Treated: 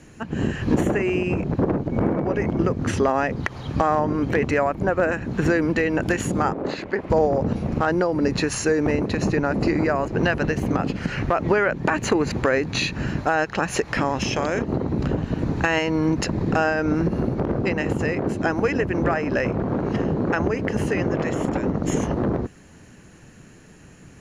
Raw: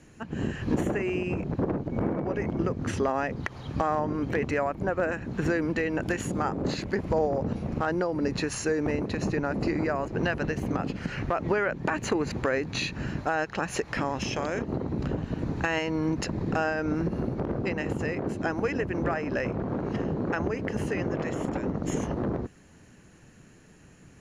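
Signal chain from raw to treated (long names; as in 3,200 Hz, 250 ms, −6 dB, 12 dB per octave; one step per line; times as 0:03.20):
0:06.53–0:07.10: bass and treble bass −13 dB, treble −13 dB
level +6.5 dB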